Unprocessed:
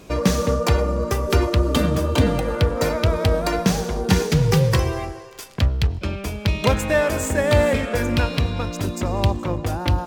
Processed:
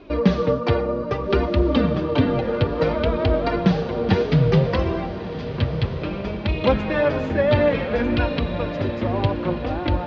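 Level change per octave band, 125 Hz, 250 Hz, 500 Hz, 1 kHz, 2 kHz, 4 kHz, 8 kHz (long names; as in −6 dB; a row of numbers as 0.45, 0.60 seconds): −2.0 dB, +1.5 dB, +1.0 dB, −1.0 dB, −2.0 dB, −4.5 dB, below −20 dB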